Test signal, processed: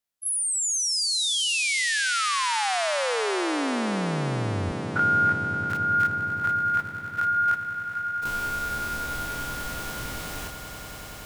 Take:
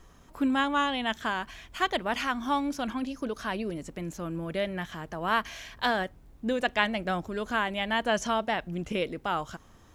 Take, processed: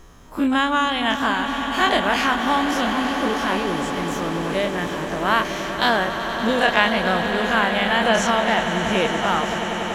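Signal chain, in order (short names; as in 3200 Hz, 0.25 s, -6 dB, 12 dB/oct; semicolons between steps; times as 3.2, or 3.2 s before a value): spectral dilation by 60 ms; swelling echo 95 ms, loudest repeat 8, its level -14 dB; gain +4.5 dB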